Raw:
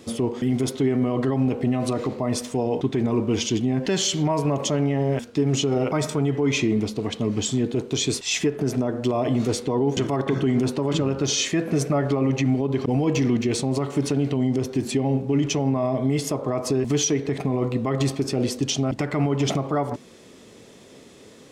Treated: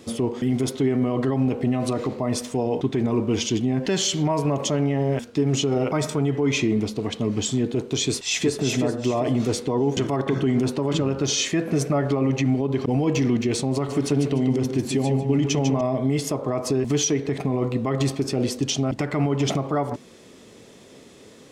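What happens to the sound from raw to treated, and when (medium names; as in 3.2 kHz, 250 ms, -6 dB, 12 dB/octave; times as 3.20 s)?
8.03–8.56 s: echo throw 380 ms, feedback 30%, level -5 dB
13.74–15.81 s: feedback delay 148 ms, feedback 23%, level -7 dB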